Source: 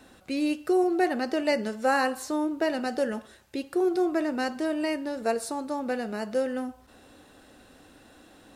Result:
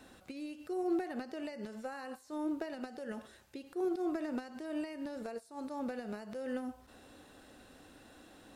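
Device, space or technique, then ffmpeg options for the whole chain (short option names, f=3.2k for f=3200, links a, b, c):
de-esser from a sidechain: -filter_complex "[0:a]asplit=2[a][b];[b]highpass=6.3k,apad=whole_len=377263[c];[a][c]sidechaincompress=threshold=-57dB:ratio=8:attack=1.1:release=93,volume=-3.5dB"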